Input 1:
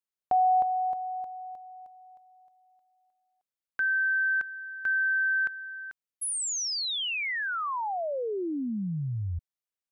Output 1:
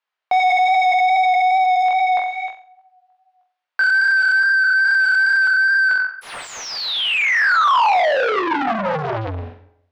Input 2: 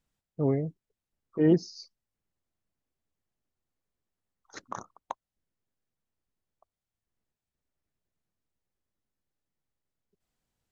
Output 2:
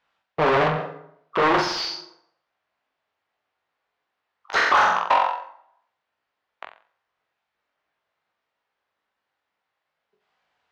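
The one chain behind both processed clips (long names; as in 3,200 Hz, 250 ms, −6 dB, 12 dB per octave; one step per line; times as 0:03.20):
leveller curve on the samples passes 5
chorus effect 2.4 Hz, delay 18.5 ms, depth 2.9 ms
high-pass filter 45 Hz 6 dB per octave
low-shelf EQ 63 Hz +12 dB
mains-hum notches 60/120/180/240/300 Hz
flutter between parallel walls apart 7.7 metres, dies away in 0.36 s
dense smooth reverb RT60 0.71 s, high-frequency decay 0.75×, DRR 19 dB
in parallel at −2.5 dB: downward compressor, threshold −30 dBFS
on the sum: mid-hump overdrive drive 36 dB, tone 1,300 Hz, clips at −5 dBFS
three-way crossover with the lows and the highs turned down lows −15 dB, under 600 Hz, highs −23 dB, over 5,000 Hz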